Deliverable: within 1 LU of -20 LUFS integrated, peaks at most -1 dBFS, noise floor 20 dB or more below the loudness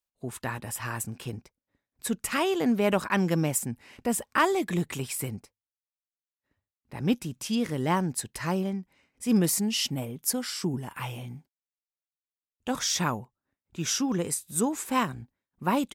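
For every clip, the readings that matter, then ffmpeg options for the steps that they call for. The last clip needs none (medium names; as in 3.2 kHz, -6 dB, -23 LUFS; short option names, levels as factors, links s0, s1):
loudness -28.5 LUFS; peak level -11.0 dBFS; loudness target -20.0 LUFS
-> -af "volume=2.66"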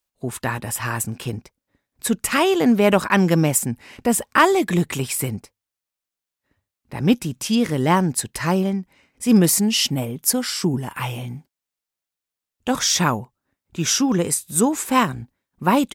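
loudness -20.0 LUFS; peak level -2.5 dBFS; noise floor -87 dBFS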